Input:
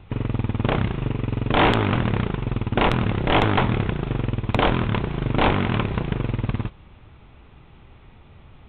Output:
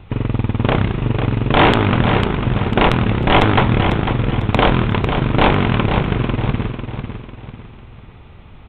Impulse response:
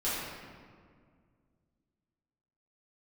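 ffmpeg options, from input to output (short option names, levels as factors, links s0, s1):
-af "aecho=1:1:498|996|1494|1992:0.422|0.16|0.0609|0.0231,volume=1.88"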